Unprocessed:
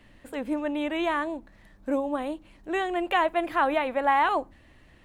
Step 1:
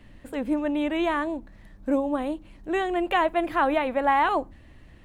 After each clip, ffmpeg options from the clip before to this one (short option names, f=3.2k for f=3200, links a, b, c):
-af "lowshelf=f=300:g=7.5"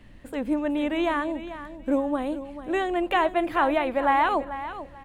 -af "aecho=1:1:440|880|1320:0.237|0.0545|0.0125"